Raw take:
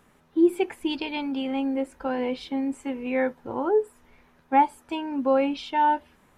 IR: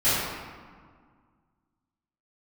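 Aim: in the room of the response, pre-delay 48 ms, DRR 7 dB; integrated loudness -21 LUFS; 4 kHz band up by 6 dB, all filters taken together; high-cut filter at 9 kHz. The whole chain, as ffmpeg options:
-filter_complex "[0:a]lowpass=9000,equalizer=f=4000:t=o:g=8.5,asplit=2[s0][s1];[1:a]atrim=start_sample=2205,adelay=48[s2];[s1][s2]afir=irnorm=-1:irlink=0,volume=0.0668[s3];[s0][s3]amix=inputs=2:normalize=0,volume=1.5"

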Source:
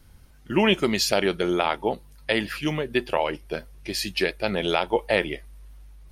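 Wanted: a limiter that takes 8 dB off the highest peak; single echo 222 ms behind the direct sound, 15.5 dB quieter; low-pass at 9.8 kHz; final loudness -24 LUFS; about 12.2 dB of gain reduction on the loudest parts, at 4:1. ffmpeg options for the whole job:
-af "lowpass=9800,acompressor=threshold=0.0282:ratio=4,alimiter=limit=0.075:level=0:latency=1,aecho=1:1:222:0.168,volume=3.98"

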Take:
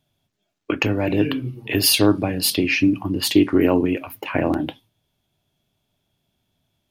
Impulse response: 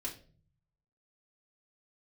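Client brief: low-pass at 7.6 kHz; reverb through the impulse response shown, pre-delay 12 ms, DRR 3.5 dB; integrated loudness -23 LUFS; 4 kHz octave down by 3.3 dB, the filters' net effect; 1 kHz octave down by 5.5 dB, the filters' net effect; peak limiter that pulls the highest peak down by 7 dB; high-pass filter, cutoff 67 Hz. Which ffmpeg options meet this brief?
-filter_complex "[0:a]highpass=67,lowpass=7600,equalizer=f=1000:t=o:g=-7.5,equalizer=f=4000:t=o:g=-3.5,alimiter=limit=0.299:level=0:latency=1,asplit=2[s0][s1];[1:a]atrim=start_sample=2205,adelay=12[s2];[s1][s2]afir=irnorm=-1:irlink=0,volume=0.668[s3];[s0][s3]amix=inputs=2:normalize=0,volume=0.841"

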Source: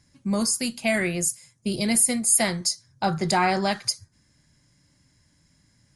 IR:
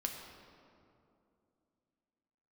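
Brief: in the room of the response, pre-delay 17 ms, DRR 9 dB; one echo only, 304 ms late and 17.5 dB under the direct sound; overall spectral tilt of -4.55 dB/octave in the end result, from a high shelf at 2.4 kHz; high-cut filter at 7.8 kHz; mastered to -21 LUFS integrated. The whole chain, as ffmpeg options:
-filter_complex "[0:a]lowpass=7800,highshelf=f=2400:g=-7.5,aecho=1:1:304:0.133,asplit=2[s0][s1];[1:a]atrim=start_sample=2205,adelay=17[s2];[s1][s2]afir=irnorm=-1:irlink=0,volume=0.316[s3];[s0][s3]amix=inputs=2:normalize=0,volume=1.88"

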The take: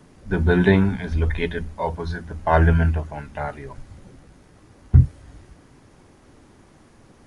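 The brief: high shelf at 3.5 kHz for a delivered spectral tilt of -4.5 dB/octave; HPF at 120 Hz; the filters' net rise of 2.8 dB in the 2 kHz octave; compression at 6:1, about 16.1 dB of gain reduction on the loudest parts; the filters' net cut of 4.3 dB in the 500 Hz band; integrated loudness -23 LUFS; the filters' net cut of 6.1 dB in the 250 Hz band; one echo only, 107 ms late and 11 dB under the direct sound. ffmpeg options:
-af "highpass=120,equalizer=f=250:t=o:g=-8.5,equalizer=f=500:t=o:g=-3,equalizer=f=2000:t=o:g=3,highshelf=f=3500:g=4.5,acompressor=threshold=0.0251:ratio=6,aecho=1:1:107:0.282,volume=5.01"

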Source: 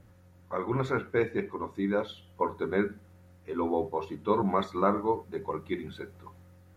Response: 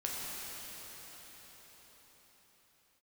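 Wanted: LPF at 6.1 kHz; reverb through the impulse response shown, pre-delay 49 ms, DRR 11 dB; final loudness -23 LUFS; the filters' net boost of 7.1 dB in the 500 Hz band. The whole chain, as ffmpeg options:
-filter_complex "[0:a]lowpass=6100,equalizer=f=500:t=o:g=8.5,asplit=2[s0][s1];[1:a]atrim=start_sample=2205,adelay=49[s2];[s1][s2]afir=irnorm=-1:irlink=0,volume=0.168[s3];[s0][s3]amix=inputs=2:normalize=0,volume=1.33"

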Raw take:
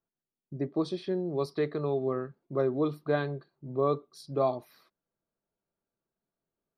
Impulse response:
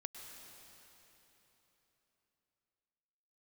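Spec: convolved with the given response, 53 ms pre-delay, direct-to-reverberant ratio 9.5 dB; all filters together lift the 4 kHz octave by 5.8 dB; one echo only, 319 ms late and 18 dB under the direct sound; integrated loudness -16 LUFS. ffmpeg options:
-filter_complex "[0:a]equalizer=f=4000:t=o:g=6.5,aecho=1:1:319:0.126,asplit=2[s0][s1];[1:a]atrim=start_sample=2205,adelay=53[s2];[s1][s2]afir=irnorm=-1:irlink=0,volume=0.473[s3];[s0][s3]amix=inputs=2:normalize=0,volume=5.62"

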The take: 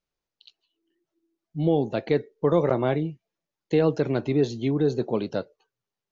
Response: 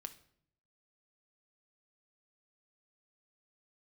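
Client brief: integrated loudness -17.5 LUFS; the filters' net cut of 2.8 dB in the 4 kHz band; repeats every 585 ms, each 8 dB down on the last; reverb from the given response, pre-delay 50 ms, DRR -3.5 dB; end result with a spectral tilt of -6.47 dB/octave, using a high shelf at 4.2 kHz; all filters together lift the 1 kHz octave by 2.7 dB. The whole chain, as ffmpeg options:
-filter_complex "[0:a]equalizer=f=1000:t=o:g=3.5,equalizer=f=4000:t=o:g=-7.5,highshelf=f=4200:g=8,aecho=1:1:585|1170|1755|2340|2925:0.398|0.159|0.0637|0.0255|0.0102,asplit=2[s0][s1];[1:a]atrim=start_sample=2205,adelay=50[s2];[s1][s2]afir=irnorm=-1:irlink=0,volume=2.51[s3];[s0][s3]amix=inputs=2:normalize=0,volume=1.19"

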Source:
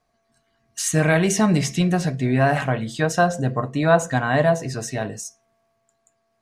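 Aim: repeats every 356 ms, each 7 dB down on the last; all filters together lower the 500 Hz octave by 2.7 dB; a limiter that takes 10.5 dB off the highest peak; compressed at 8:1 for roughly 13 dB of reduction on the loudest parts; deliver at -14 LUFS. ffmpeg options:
-af "equalizer=f=500:t=o:g=-4,acompressor=threshold=0.0447:ratio=8,alimiter=level_in=1.5:limit=0.0631:level=0:latency=1,volume=0.668,aecho=1:1:356|712|1068|1424|1780:0.447|0.201|0.0905|0.0407|0.0183,volume=11.9"

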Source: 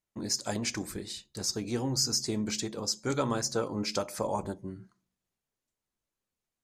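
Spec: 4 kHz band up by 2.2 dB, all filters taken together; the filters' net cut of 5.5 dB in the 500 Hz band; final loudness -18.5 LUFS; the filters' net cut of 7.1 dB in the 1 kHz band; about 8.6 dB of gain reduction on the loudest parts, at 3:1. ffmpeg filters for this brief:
-af "equalizer=f=500:t=o:g=-5,equalizer=f=1000:t=o:g=-8,equalizer=f=4000:t=o:g=3.5,acompressor=threshold=0.0178:ratio=3,volume=8.91"

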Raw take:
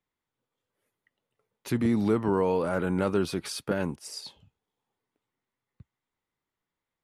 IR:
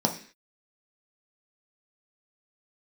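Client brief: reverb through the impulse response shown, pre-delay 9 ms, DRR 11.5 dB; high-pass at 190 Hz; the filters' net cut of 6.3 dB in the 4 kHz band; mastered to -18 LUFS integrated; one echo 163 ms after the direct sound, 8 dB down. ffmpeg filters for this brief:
-filter_complex "[0:a]highpass=190,equalizer=f=4000:t=o:g=-8,aecho=1:1:163:0.398,asplit=2[s0][s1];[1:a]atrim=start_sample=2205,adelay=9[s2];[s1][s2]afir=irnorm=-1:irlink=0,volume=0.075[s3];[s0][s3]amix=inputs=2:normalize=0,volume=2.82"

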